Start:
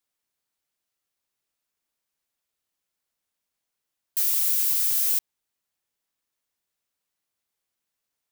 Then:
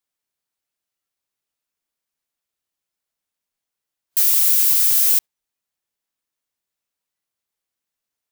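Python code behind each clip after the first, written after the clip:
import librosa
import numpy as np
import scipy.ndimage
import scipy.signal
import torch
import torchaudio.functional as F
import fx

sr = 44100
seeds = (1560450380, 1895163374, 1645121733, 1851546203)

y = fx.noise_reduce_blind(x, sr, reduce_db=9)
y = y * librosa.db_to_amplitude(7.5)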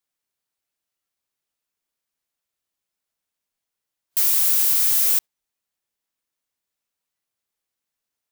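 y = 10.0 ** (-12.5 / 20.0) * np.tanh(x / 10.0 ** (-12.5 / 20.0))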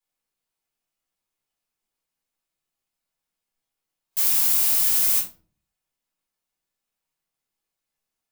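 y = fx.room_shoebox(x, sr, seeds[0], volume_m3=240.0, walls='furnished', distance_m=4.0)
y = y * librosa.db_to_amplitude(-7.5)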